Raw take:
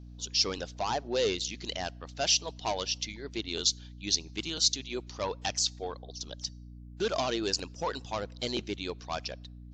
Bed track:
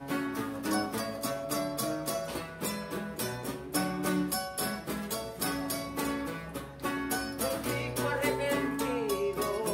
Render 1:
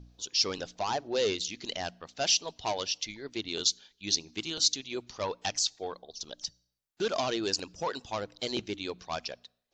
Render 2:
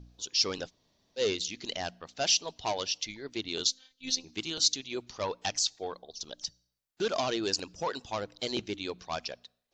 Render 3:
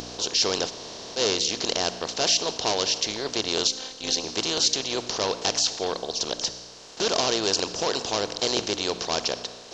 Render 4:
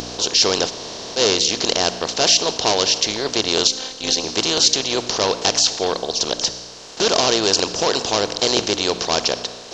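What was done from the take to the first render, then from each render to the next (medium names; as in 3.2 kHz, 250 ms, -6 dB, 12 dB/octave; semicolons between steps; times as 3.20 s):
de-hum 60 Hz, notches 5
0.68–1.19 s: room tone, crossfade 0.06 s; 3.67–4.24 s: robot voice 260 Hz
spectral levelling over time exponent 0.4; upward compressor, threshold -40 dBFS
trim +7 dB; peak limiter -1 dBFS, peak gain reduction 2.5 dB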